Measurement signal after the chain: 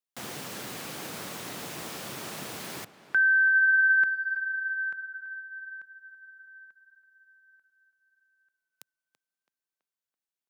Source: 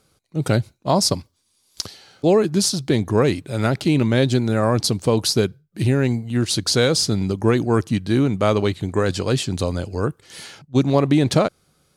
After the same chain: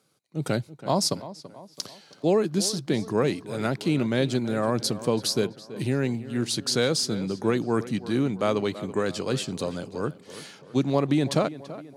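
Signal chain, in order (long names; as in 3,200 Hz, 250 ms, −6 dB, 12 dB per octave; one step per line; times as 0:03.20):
high-pass filter 130 Hz 24 dB per octave
tape delay 331 ms, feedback 54%, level −14 dB, low-pass 2,700 Hz
level −6 dB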